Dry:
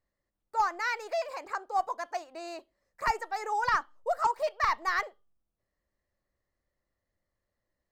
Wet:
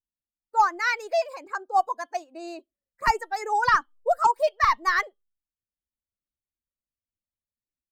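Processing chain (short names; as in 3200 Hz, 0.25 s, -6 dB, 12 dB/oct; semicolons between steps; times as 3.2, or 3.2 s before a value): per-bin expansion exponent 1.5; mismatched tape noise reduction decoder only; gain +8.5 dB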